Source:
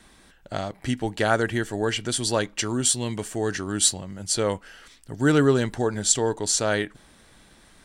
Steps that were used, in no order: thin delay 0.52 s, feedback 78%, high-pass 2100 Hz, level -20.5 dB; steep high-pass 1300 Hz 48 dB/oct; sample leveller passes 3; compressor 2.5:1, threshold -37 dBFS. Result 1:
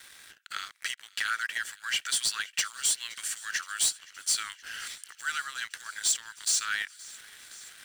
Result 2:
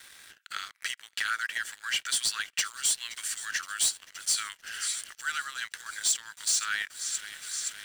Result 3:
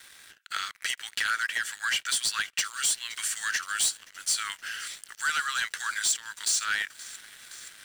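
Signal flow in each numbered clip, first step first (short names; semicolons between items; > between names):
compressor > steep high-pass > sample leveller > thin delay; thin delay > compressor > steep high-pass > sample leveller; steep high-pass > compressor > thin delay > sample leveller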